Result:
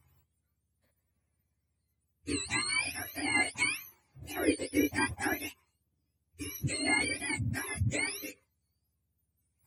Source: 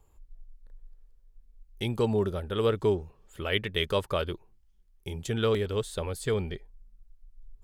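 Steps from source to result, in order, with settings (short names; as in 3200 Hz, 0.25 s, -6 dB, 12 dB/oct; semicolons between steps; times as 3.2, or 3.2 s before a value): spectrum mirrored in octaves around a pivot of 1100 Hz; varispeed -21%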